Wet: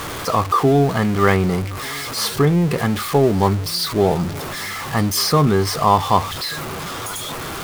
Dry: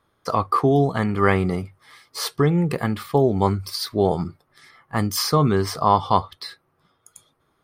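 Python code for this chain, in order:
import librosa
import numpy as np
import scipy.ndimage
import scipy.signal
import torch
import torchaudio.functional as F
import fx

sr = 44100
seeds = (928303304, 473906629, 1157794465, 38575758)

y = x + 0.5 * 10.0 ** (-24.0 / 20.0) * np.sign(x)
y = y + 10.0 ** (-23.5 / 20.0) * np.pad(y, (int(1187 * sr / 1000.0), 0))[:len(y)]
y = F.gain(torch.from_numpy(y), 1.5).numpy()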